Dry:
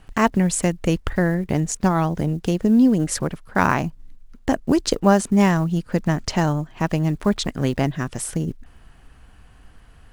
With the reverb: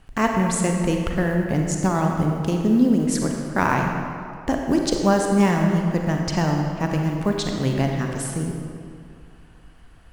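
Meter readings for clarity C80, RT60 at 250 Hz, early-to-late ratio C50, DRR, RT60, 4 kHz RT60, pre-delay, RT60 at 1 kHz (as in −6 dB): 3.5 dB, 2.4 s, 2.0 dB, 1.5 dB, 2.3 s, 1.6 s, 35 ms, 2.3 s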